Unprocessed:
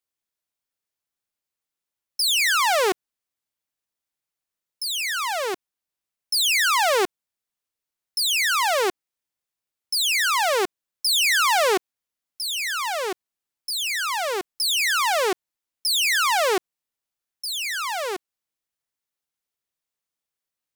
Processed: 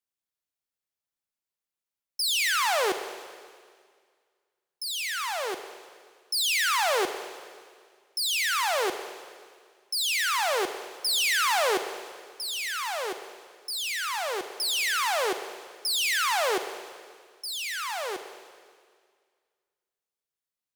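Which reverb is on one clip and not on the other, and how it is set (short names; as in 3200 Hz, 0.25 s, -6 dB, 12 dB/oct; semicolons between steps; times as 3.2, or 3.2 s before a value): Schroeder reverb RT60 1.9 s, DRR 8.5 dB; gain -5.5 dB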